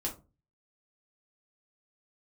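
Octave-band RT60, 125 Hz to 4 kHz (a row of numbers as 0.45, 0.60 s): 0.55, 0.40, 0.35, 0.25, 0.20, 0.15 s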